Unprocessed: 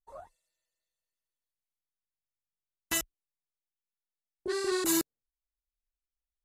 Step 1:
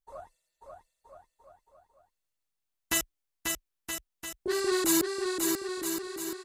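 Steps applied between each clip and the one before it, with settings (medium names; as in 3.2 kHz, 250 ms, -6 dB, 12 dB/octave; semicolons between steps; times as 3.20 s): bouncing-ball echo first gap 540 ms, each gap 0.8×, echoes 5; trim +2.5 dB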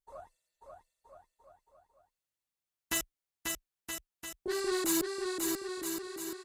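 single-diode clipper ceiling -18.5 dBFS; trim -3.5 dB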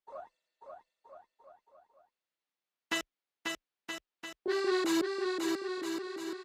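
three-band isolator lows -21 dB, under 180 Hz, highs -21 dB, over 5 kHz; trim +3 dB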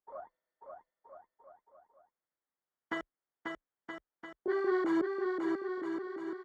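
Savitzky-Golay filter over 41 samples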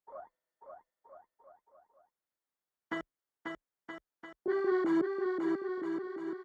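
dynamic bell 160 Hz, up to +7 dB, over -50 dBFS, Q 0.78; trim -1.5 dB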